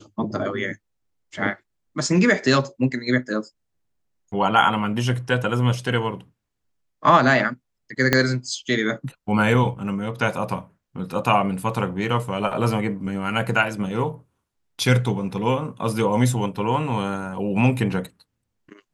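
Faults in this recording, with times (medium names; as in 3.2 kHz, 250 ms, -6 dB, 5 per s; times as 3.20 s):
8.13 s: pop -2 dBFS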